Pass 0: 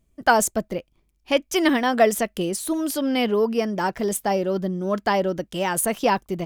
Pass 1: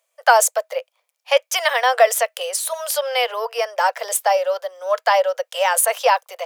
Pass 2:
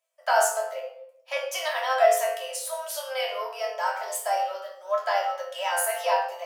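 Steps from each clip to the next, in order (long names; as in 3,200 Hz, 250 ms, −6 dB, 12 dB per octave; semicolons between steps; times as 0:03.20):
in parallel at 0 dB: brickwall limiter −13.5 dBFS, peak gain reduction 8.5 dB; on the sum: Butterworth high-pass 490 Hz 96 dB per octave; level +1 dB
resonators tuned to a chord F2 fifth, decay 0.3 s; rectangular room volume 1,900 cubic metres, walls furnished, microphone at 2.9 metres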